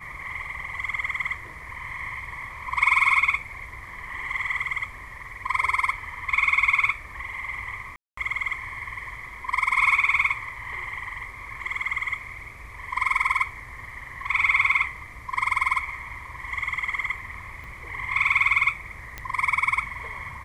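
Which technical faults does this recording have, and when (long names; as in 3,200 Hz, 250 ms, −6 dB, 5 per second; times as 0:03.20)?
0:07.96–0:08.17: drop-out 214 ms
0:17.64: click
0:19.18: click −17 dBFS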